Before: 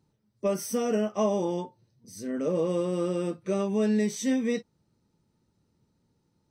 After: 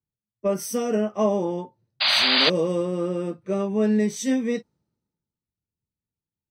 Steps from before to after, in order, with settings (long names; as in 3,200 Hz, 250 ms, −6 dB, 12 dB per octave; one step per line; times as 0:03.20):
sound drawn into the spectrogram noise, 0:02.00–0:02.50, 550–4,900 Hz −26 dBFS
multiband upward and downward expander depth 70%
level +3 dB